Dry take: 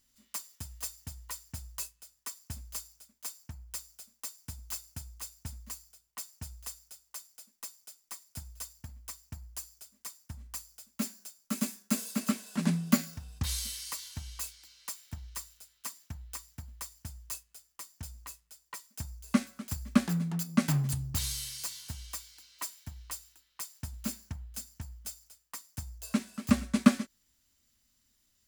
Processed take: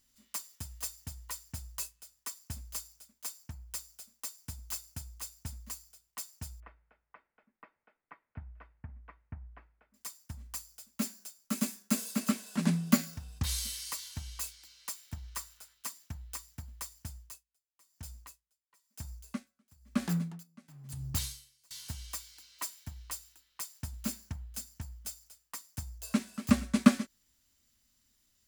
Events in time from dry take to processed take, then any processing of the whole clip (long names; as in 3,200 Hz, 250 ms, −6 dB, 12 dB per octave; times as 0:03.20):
0:06.60–0:09.94: Butterworth low-pass 2,200 Hz
0:15.23–0:15.73: parametric band 1,200 Hz +3 dB → +10 dB 1.6 octaves
0:17.13–0:21.71: tremolo with a sine in dB 1 Hz, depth 30 dB